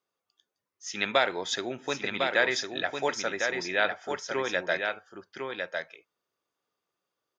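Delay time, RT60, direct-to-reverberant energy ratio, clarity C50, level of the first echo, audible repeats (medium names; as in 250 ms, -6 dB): 1053 ms, no reverb, no reverb, no reverb, -5.0 dB, 1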